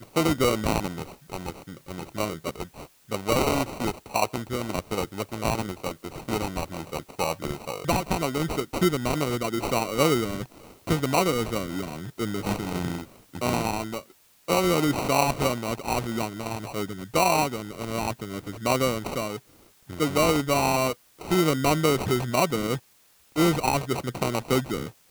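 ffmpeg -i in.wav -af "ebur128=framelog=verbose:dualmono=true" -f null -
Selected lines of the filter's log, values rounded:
Integrated loudness:
  I:         -23.5 LUFS
  Threshold: -34.0 LUFS
Loudness range:
  LRA:         5.3 LU
  Threshold: -44.0 LUFS
  LRA low:   -27.0 LUFS
  LRA high:  -21.7 LUFS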